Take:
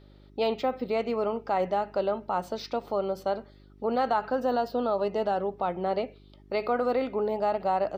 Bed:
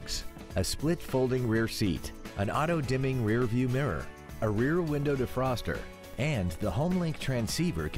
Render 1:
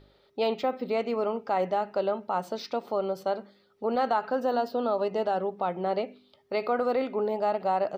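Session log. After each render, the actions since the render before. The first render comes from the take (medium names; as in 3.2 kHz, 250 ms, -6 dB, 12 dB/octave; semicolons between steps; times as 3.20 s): de-hum 50 Hz, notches 7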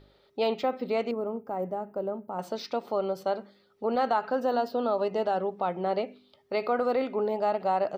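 1.11–2.39 s: FFT filter 270 Hz 0 dB, 1.4 kHz -11 dB, 4.1 kHz -25 dB, 13 kHz +6 dB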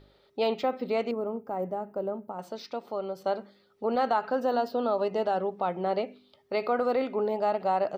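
2.32–3.24 s: gain -4.5 dB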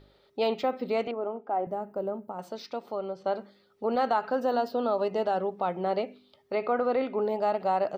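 1.07–1.67 s: cabinet simulation 320–3700 Hz, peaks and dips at 340 Hz +5 dB, 500 Hz -4 dB, 740 Hz +8 dB, 1.5 kHz +4 dB, 3.2 kHz +5 dB; 2.95–3.35 s: distance through air 110 m; 6.54–7.20 s: low-pass 2.5 kHz -> 5.2 kHz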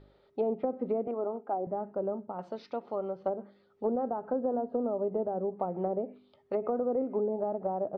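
low-pass 1.4 kHz 6 dB/octave; low-pass that closes with the level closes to 520 Hz, closed at -25 dBFS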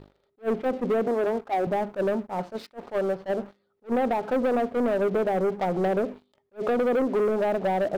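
waveshaping leveller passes 3; attacks held to a fixed rise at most 410 dB/s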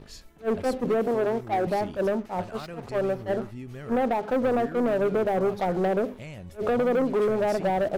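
add bed -11 dB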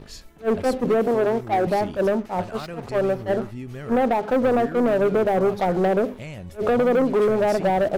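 trim +4.5 dB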